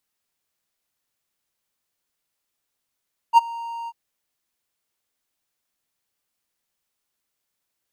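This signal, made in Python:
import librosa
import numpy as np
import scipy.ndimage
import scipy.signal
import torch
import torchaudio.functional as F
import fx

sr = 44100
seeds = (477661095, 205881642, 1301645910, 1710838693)

y = fx.adsr_tone(sr, wave='triangle', hz=929.0, attack_ms=45.0, decay_ms=21.0, sustain_db=-22.5, held_s=0.55, release_ms=43.0, level_db=-4.5)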